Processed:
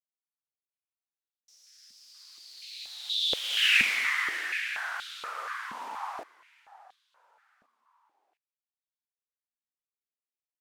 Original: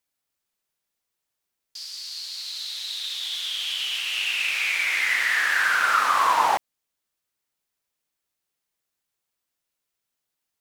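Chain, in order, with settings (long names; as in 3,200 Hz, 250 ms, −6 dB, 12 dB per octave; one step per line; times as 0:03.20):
source passing by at 0:03.74, 53 m/s, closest 9.7 metres
repeating echo 713 ms, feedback 47%, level −22.5 dB
high-pass on a step sequencer 4.2 Hz 230–3,600 Hz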